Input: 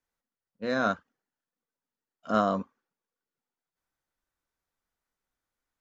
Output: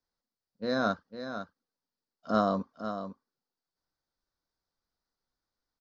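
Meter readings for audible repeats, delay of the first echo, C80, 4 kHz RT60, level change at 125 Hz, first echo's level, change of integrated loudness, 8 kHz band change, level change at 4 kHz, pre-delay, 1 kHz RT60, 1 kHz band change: 1, 0.503 s, none, none, 0.0 dB, -9.5 dB, -3.0 dB, n/a, +1.5 dB, none, none, -2.0 dB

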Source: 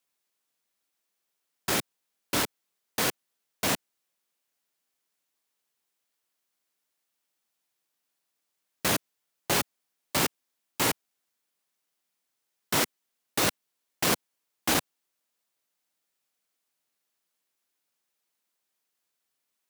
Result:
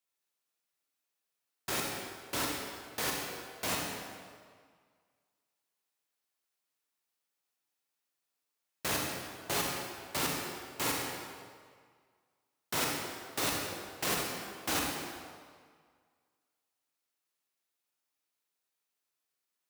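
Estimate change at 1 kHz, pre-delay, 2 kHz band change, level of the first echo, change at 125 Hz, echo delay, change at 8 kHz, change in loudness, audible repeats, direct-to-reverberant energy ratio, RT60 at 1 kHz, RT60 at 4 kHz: -4.0 dB, 36 ms, -4.5 dB, none, -6.0 dB, none, -5.0 dB, -6.0 dB, none, -1.0 dB, 1.9 s, 1.5 s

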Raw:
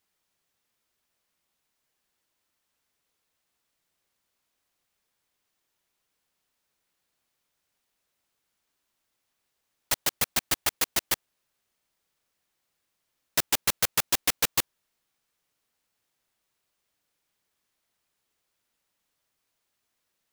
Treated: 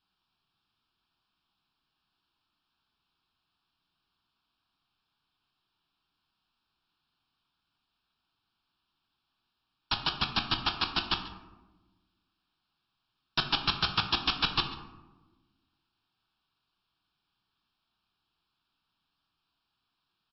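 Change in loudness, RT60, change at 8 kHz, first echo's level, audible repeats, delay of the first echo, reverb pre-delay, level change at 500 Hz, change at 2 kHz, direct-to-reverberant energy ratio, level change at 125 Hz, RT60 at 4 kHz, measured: -3.0 dB, 1.2 s, under -35 dB, -18.0 dB, 1, 0.139 s, 6 ms, -6.5 dB, -1.5 dB, 5.0 dB, +4.0 dB, 0.55 s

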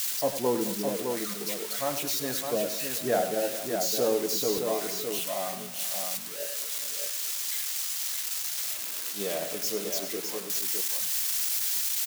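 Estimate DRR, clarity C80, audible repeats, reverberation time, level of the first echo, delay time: none, none, 4, none, -10.5 dB, 98 ms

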